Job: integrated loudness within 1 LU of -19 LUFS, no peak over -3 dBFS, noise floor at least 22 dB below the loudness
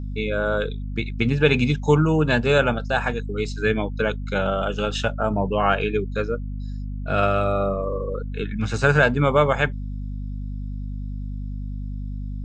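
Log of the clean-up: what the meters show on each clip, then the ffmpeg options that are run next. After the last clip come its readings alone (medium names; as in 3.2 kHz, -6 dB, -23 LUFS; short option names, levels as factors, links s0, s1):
hum 50 Hz; highest harmonic 250 Hz; hum level -27 dBFS; loudness -23.0 LUFS; peak level -3.0 dBFS; loudness target -19.0 LUFS
-> -af "bandreject=f=50:t=h:w=6,bandreject=f=100:t=h:w=6,bandreject=f=150:t=h:w=6,bandreject=f=200:t=h:w=6,bandreject=f=250:t=h:w=6"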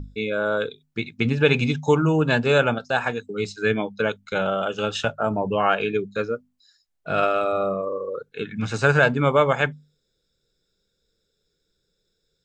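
hum not found; loudness -23.0 LUFS; peak level -3.0 dBFS; loudness target -19.0 LUFS
-> -af "volume=1.58,alimiter=limit=0.708:level=0:latency=1"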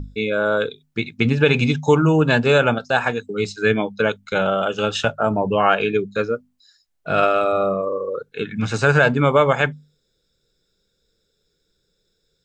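loudness -19.5 LUFS; peak level -3.0 dBFS; noise floor -71 dBFS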